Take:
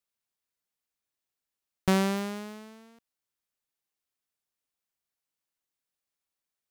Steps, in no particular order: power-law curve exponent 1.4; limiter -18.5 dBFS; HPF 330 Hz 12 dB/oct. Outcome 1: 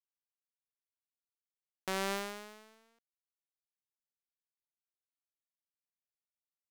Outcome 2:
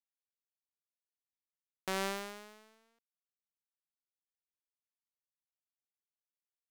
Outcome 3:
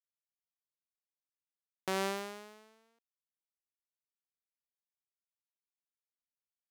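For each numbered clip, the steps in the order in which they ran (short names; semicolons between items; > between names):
HPF > limiter > power-law curve; HPF > power-law curve > limiter; power-law curve > HPF > limiter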